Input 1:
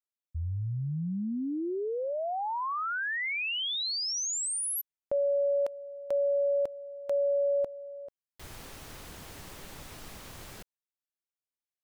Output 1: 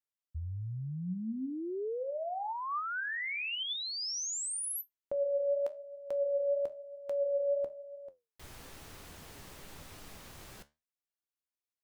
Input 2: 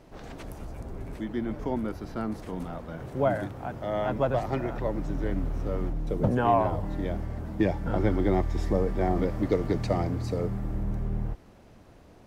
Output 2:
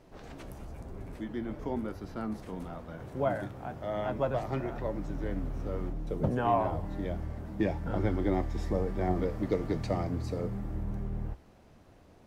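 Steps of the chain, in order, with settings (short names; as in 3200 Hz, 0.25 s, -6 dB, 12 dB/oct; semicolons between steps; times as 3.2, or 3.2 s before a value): flange 1 Hz, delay 9.7 ms, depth 6.4 ms, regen +70%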